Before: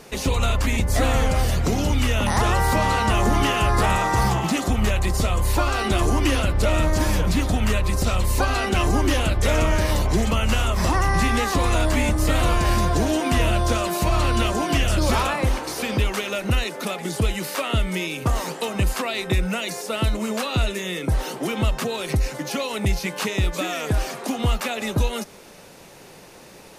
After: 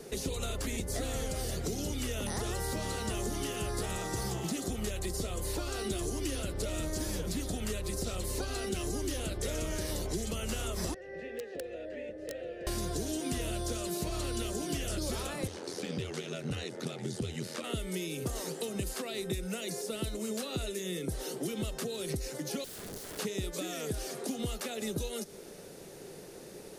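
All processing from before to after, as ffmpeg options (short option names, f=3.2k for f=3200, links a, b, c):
-filter_complex "[0:a]asettb=1/sr,asplit=3[a][b][c];[a]atrim=end=10.944[d];[b]atrim=start=10.94:end=12.67,asetpts=PTS-STARTPTS,afade=t=in:d=0.004:c=qsin,afade=t=out:st=1.726:d=0.004:c=qsin,asplit=3[e][f][g];[e]bandpass=f=530:t=q:w=8,volume=0dB[h];[f]bandpass=f=1.84k:t=q:w=8,volume=-6dB[i];[g]bandpass=f=2.48k:t=q:w=8,volume=-9dB[j];[h][i][j]amix=inputs=3:normalize=0,aemphasis=mode=reproduction:type=50fm,aeval=exprs='(mod(14.1*val(0)+1,2)-1)/14.1':c=same[k];[c]atrim=start=12.666[l];[d][k]acrossfade=d=0.004:c1=hsin:c2=qsin[m];[m][l]acrossfade=d=0.004:c1=qsin:c2=hsin,asettb=1/sr,asplit=3[n][o][p];[n]atrim=end=15.474[q];[o]atrim=start=15.47:end=17.64,asetpts=PTS-STARTPTS,afade=t=in:d=0.004:c=qsin,afade=t=out:st=2.166:d=0.004:c=qsin,aeval=exprs='val(0)*sin(2*PI*42*n/s)':c=same,highpass=140,lowpass=6.5k,asubboost=boost=6.5:cutoff=190[r];[p]atrim=start=17.636[s];[q][r]acrossfade=d=0.004:c1=hsin:c2=qsin[t];[t][s]acrossfade=d=0.004:c1=qsin:c2=hsin,asettb=1/sr,asplit=3[u][v][w];[u]atrim=end=22.644[x];[v]atrim=start=22.64:end=23.19,asetpts=PTS-STARTPTS,afade=t=in:d=0.004:c=qsin,afade=t=out:st=0.546:d=0.004:c=qsin,equalizer=f=2.9k:w=0.78:g=-15,acompressor=threshold=-28dB:ratio=5:attack=3.2:release=140:knee=1:detection=peak,aeval=exprs='(mod(47.3*val(0)+1,2)-1)/47.3':c=same[y];[w]atrim=start=23.186[z];[x][y]acrossfade=d=0.004:c1=hsin:c2=qsin[aa];[aa][z]acrossfade=d=0.004:c1=qsin:c2=hsin,equalizer=f=160:t=o:w=0.67:g=3,equalizer=f=400:t=o:w=0.67:g=9,equalizer=f=1k:t=o:w=0.67:g=-7,equalizer=f=2.5k:t=o:w=0.67:g=-5,equalizer=f=10k:t=o:w=0.67:g=4,acrossover=split=210|3000|6700[ab][ac][ad][ae];[ab]acompressor=threshold=-33dB:ratio=4[af];[ac]acompressor=threshold=-33dB:ratio=4[ag];[ad]acompressor=threshold=-38dB:ratio=4[ah];[ae]acompressor=threshold=-38dB:ratio=4[ai];[af][ag][ah][ai]amix=inputs=4:normalize=0,volume=-5.5dB"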